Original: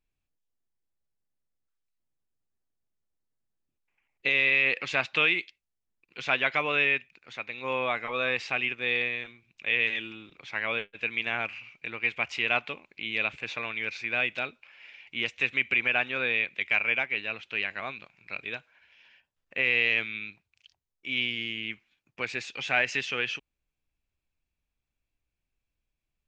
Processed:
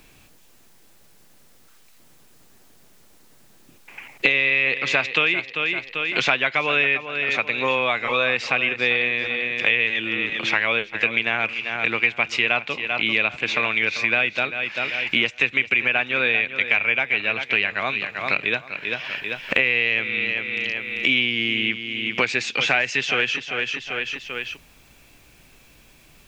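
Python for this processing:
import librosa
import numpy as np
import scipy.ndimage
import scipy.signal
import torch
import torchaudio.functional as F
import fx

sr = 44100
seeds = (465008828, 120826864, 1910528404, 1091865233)

p1 = x + fx.echo_feedback(x, sr, ms=392, feedback_pct=28, wet_db=-13, dry=0)
p2 = fx.band_squash(p1, sr, depth_pct=100)
y = p2 * librosa.db_to_amplitude(6.5)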